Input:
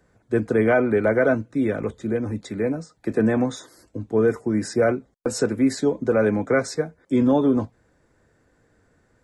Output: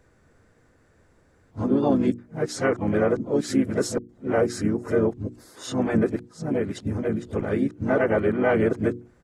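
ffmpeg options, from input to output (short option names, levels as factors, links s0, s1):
-filter_complex "[0:a]areverse,bandreject=f=60:t=h:w=6,bandreject=f=120:t=h:w=6,bandreject=f=180:t=h:w=6,bandreject=f=240:t=h:w=6,bandreject=f=300:t=h:w=6,bandreject=f=360:t=h:w=6,asplit=2[s0][s1];[s1]acompressor=threshold=0.0355:ratio=6,volume=1.12[s2];[s0][s2]amix=inputs=2:normalize=0,asplit=4[s3][s4][s5][s6];[s4]asetrate=35002,aresample=44100,atempo=1.25992,volume=0.447[s7];[s5]asetrate=55563,aresample=44100,atempo=0.793701,volume=0.2[s8];[s6]asetrate=58866,aresample=44100,atempo=0.749154,volume=0.224[s9];[s3][s7][s8][s9]amix=inputs=4:normalize=0,lowshelf=f=150:g=3.5,volume=0.501"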